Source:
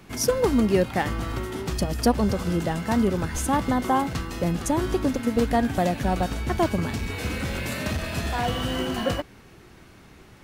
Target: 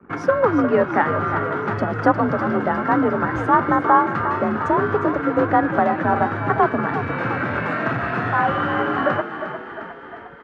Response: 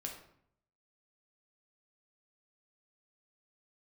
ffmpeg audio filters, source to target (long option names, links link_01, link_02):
-filter_complex "[0:a]afreqshift=46,lowshelf=frequency=240:gain=-6.5,asplit=2[link_01][link_02];[link_02]acompressor=threshold=-37dB:ratio=6,volume=1dB[link_03];[link_01][link_03]amix=inputs=2:normalize=0,anlmdn=0.398,lowpass=frequency=1400:width_type=q:width=3.3,asplit=2[link_04][link_05];[link_05]asplit=7[link_06][link_07][link_08][link_09][link_10][link_11][link_12];[link_06]adelay=355,afreqshift=36,volume=-10dB[link_13];[link_07]adelay=710,afreqshift=72,volume=-14.3dB[link_14];[link_08]adelay=1065,afreqshift=108,volume=-18.6dB[link_15];[link_09]adelay=1420,afreqshift=144,volume=-22.9dB[link_16];[link_10]adelay=1775,afreqshift=180,volume=-27.2dB[link_17];[link_11]adelay=2130,afreqshift=216,volume=-31.5dB[link_18];[link_12]adelay=2485,afreqshift=252,volume=-35.8dB[link_19];[link_13][link_14][link_15][link_16][link_17][link_18][link_19]amix=inputs=7:normalize=0[link_20];[link_04][link_20]amix=inputs=2:normalize=0,volume=2.5dB"